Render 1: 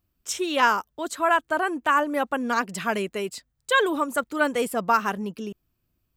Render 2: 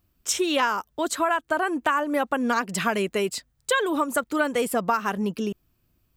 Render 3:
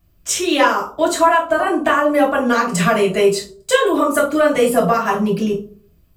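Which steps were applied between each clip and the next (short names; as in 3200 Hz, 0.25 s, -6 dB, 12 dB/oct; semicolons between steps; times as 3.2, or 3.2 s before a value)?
compressor 6:1, threshold -26 dBFS, peak gain reduction 11 dB; gain +6 dB
reverb RT60 0.50 s, pre-delay 3 ms, DRR -5 dB; gain -1 dB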